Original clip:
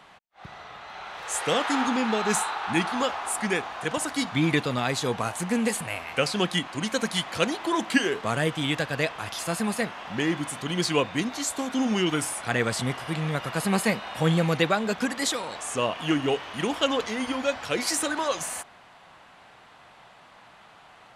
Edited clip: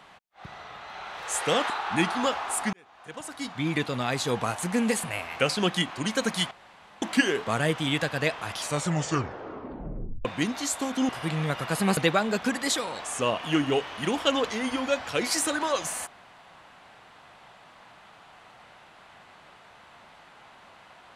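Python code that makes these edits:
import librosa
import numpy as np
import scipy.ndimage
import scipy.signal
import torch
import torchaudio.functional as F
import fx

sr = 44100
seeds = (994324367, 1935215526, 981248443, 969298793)

y = fx.edit(x, sr, fx.cut(start_s=1.7, length_s=0.77),
    fx.fade_in_span(start_s=3.5, length_s=1.64),
    fx.room_tone_fill(start_s=7.28, length_s=0.51),
    fx.tape_stop(start_s=9.3, length_s=1.72),
    fx.cut(start_s=11.86, length_s=1.08),
    fx.cut(start_s=13.82, length_s=0.71), tone=tone)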